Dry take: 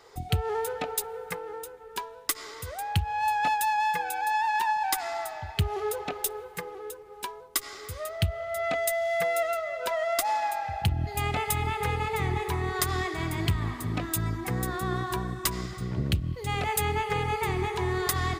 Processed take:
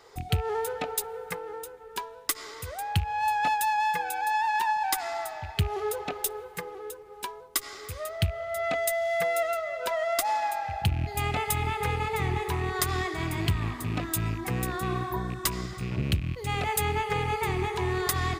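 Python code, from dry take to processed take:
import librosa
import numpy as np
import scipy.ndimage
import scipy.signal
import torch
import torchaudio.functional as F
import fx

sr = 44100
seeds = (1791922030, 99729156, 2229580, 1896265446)

y = fx.rattle_buzz(x, sr, strikes_db=-32.0, level_db=-32.0)
y = fx.spec_repair(y, sr, seeds[0], start_s=14.9, length_s=0.32, low_hz=1100.0, high_hz=11000.0, source='both')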